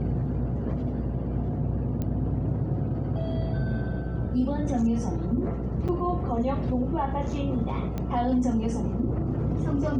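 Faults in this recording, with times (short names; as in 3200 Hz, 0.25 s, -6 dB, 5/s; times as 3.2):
buzz 60 Hz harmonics 9 -32 dBFS
2.02 pop -19 dBFS
5.88–5.89 gap 6.5 ms
7.98 pop -19 dBFS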